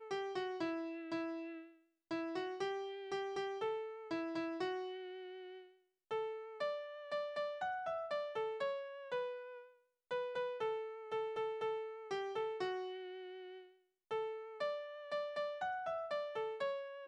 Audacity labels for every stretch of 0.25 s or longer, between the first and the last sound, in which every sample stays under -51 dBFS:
1.650000	2.110000	silence
5.620000	6.110000	silence
9.630000	10.110000	silence
13.620000	14.110000	silence